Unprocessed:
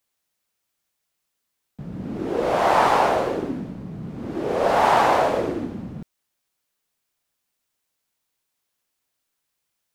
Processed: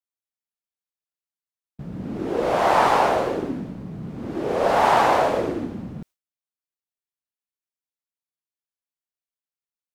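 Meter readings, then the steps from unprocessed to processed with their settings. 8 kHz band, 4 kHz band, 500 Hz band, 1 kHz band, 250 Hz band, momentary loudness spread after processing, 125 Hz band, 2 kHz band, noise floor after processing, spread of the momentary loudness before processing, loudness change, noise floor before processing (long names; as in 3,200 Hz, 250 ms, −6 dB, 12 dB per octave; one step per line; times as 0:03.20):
0.0 dB, 0.0 dB, 0.0 dB, 0.0 dB, 0.0 dB, 18 LU, 0.0 dB, 0.0 dB, below −85 dBFS, 18 LU, 0.0 dB, −78 dBFS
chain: noise gate with hold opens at −29 dBFS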